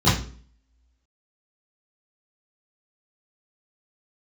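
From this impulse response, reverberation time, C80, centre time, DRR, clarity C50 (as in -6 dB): 0.45 s, 11.5 dB, 39 ms, -12.5 dB, 6.0 dB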